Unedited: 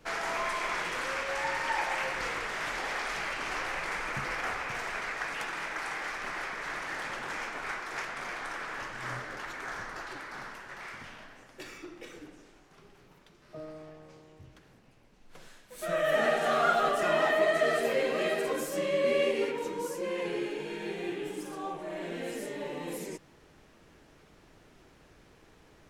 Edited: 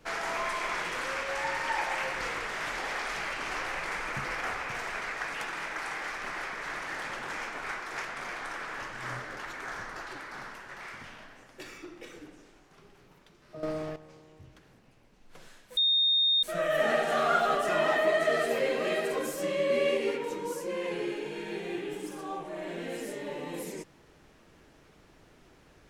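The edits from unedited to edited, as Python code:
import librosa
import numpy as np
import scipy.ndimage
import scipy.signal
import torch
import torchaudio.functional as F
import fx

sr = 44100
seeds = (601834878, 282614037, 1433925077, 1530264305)

y = fx.edit(x, sr, fx.clip_gain(start_s=13.63, length_s=0.33, db=11.5),
    fx.insert_tone(at_s=15.77, length_s=0.66, hz=3680.0, db=-21.5), tone=tone)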